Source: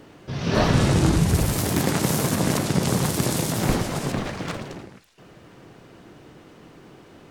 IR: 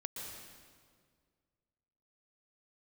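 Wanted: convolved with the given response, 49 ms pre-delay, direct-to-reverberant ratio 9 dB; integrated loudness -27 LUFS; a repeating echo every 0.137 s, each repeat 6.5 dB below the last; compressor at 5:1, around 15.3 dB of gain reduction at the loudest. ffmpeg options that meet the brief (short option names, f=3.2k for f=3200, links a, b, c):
-filter_complex "[0:a]acompressor=threshold=-33dB:ratio=5,aecho=1:1:137|274|411|548|685|822:0.473|0.222|0.105|0.0491|0.0231|0.0109,asplit=2[a][b];[1:a]atrim=start_sample=2205,adelay=49[c];[b][c]afir=irnorm=-1:irlink=0,volume=-8dB[d];[a][d]amix=inputs=2:normalize=0,volume=7dB"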